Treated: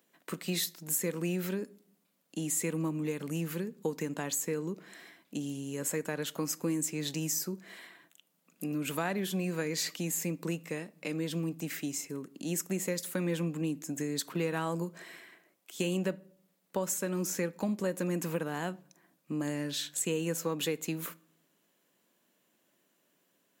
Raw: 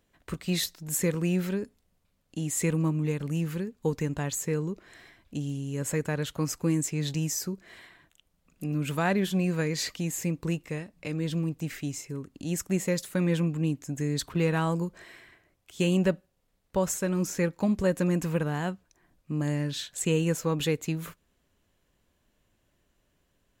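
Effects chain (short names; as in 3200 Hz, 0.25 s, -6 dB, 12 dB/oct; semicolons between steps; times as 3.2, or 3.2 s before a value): HPF 190 Hz 24 dB/oct; high shelf 11000 Hz +11.5 dB; compressor 2.5:1, threshold -31 dBFS, peak gain reduction 8 dB; on a send: reverb RT60 0.60 s, pre-delay 6 ms, DRR 18 dB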